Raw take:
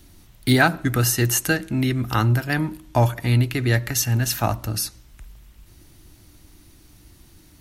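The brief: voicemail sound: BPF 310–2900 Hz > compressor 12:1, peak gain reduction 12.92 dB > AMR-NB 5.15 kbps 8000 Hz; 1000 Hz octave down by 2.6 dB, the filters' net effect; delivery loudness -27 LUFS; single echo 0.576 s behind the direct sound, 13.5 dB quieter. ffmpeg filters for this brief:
-af "highpass=310,lowpass=2.9k,equalizer=f=1k:t=o:g=-3.5,aecho=1:1:576:0.211,acompressor=threshold=-26dB:ratio=12,volume=8dB" -ar 8000 -c:a libopencore_amrnb -b:a 5150

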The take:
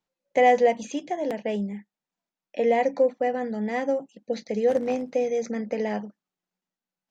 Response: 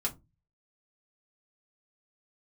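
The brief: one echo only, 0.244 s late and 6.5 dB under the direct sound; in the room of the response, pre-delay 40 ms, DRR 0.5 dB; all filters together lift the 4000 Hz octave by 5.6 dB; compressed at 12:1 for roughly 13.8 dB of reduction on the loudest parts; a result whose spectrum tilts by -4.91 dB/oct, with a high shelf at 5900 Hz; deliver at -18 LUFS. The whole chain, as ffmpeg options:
-filter_complex "[0:a]equalizer=f=4k:t=o:g=6.5,highshelf=f=5.9k:g=4,acompressor=threshold=-28dB:ratio=12,aecho=1:1:244:0.473,asplit=2[a][b];[1:a]atrim=start_sample=2205,adelay=40[c];[b][c]afir=irnorm=-1:irlink=0,volume=-4.5dB[d];[a][d]amix=inputs=2:normalize=0,volume=12dB"

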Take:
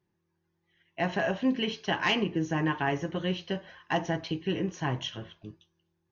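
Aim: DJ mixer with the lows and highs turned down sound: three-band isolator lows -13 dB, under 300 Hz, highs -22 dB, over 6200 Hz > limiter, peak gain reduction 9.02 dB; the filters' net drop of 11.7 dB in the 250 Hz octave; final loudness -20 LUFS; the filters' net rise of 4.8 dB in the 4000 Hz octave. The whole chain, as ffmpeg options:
-filter_complex "[0:a]acrossover=split=300 6200:gain=0.224 1 0.0794[a][b][c];[a][b][c]amix=inputs=3:normalize=0,equalizer=f=250:t=o:g=-8.5,equalizer=f=4k:t=o:g=8.5,volume=14.5dB,alimiter=limit=-7dB:level=0:latency=1"

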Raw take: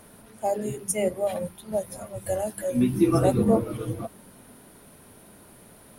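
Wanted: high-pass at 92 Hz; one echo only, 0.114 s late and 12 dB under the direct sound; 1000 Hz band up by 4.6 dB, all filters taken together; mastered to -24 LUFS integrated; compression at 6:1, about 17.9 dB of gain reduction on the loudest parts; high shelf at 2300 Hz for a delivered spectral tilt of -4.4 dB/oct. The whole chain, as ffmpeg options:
-af "highpass=92,equalizer=f=1k:t=o:g=5.5,highshelf=f=2.3k:g=7,acompressor=threshold=-35dB:ratio=6,aecho=1:1:114:0.251,volume=15dB"

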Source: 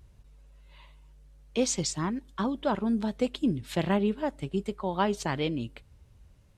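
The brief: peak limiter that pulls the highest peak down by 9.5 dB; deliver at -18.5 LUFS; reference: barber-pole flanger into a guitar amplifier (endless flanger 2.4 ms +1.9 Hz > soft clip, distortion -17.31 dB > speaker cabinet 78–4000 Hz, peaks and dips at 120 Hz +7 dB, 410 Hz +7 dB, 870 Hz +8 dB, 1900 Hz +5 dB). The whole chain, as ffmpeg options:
-filter_complex "[0:a]alimiter=limit=-23.5dB:level=0:latency=1,asplit=2[a][b];[b]adelay=2.4,afreqshift=1.9[c];[a][c]amix=inputs=2:normalize=1,asoftclip=threshold=-29dB,highpass=78,equalizer=f=120:t=q:w=4:g=7,equalizer=f=410:t=q:w=4:g=7,equalizer=f=870:t=q:w=4:g=8,equalizer=f=1.9k:t=q:w=4:g=5,lowpass=f=4k:w=0.5412,lowpass=f=4k:w=1.3066,volume=18dB"

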